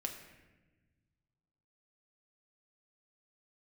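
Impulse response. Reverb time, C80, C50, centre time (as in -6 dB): 1.2 s, 8.5 dB, 7.0 dB, 28 ms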